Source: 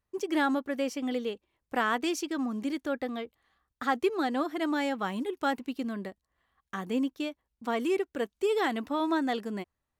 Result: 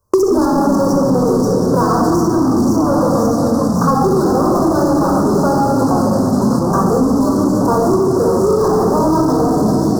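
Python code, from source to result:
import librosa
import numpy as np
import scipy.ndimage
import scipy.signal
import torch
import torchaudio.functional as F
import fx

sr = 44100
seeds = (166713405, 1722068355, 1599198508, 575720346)

p1 = fx.self_delay(x, sr, depth_ms=0.077)
p2 = fx.echo_wet_highpass(p1, sr, ms=534, feedback_pct=57, hz=3200.0, wet_db=-5)
p3 = fx.room_shoebox(p2, sr, seeds[0], volume_m3=3000.0, walls='mixed', distance_m=5.1)
p4 = fx.level_steps(p3, sr, step_db=18)
p5 = p3 + (p4 * librosa.db_to_amplitude(1.0))
p6 = fx.low_shelf(p5, sr, hz=130.0, db=-8.0)
p7 = fx.leveller(p6, sr, passes=5)
p8 = fx.echo_pitch(p7, sr, ms=102, semitones=-7, count=3, db_per_echo=-6.0)
p9 = scipy.signal.sosfilt(scipy.signal.ellip(3, 1.0, 70, [1200.0, 5300.0], 'bandstop', fs=sr, output='sos'), p8)
p10 = fx.band_squash(p9, sr, depth_pct=100)
y = p10 * librosa.db_to_amplitude(-6.5)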